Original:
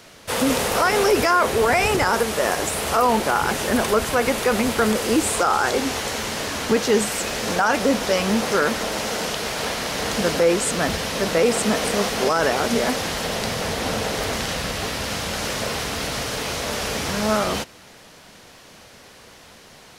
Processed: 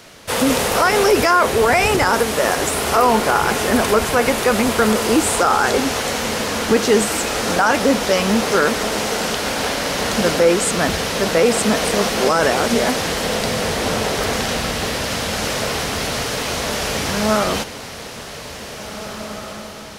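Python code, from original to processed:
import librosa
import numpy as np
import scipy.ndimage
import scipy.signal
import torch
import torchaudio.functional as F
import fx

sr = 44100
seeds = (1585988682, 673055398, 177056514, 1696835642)

y = fx.echo_diffused(x, sr, ms=1964, feedback_pct=42, wet_db=-11)
y = y * 10.0 ** (3.5 / 20.0)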